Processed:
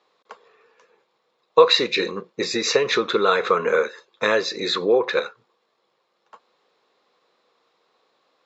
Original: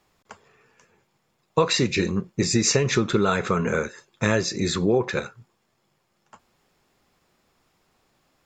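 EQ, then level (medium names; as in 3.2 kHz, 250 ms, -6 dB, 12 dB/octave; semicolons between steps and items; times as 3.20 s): dynamic bell 1.9 kHz, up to +4 dB, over -37 dBFS, Q 0.75; distance through air 99 m; cabinet simulation 370–7700 Hz, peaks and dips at 480 Hz +10 dB, 1.1 kHz +6 dB, 3.9 kHz +10 dB; 0.0 dB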